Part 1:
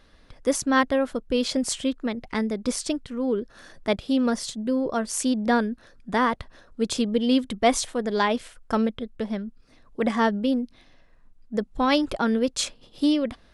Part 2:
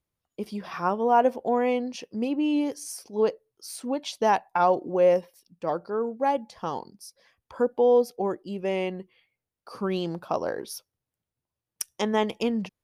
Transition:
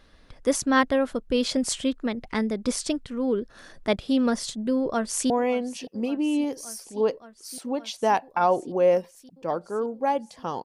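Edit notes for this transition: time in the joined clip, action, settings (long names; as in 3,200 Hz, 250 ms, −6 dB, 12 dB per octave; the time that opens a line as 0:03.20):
part 1
0:04.80–0:05.30: delay throw 570 ms, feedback 85%, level −17.5 dB
0:05.30: continue with part 2 from 0:01.49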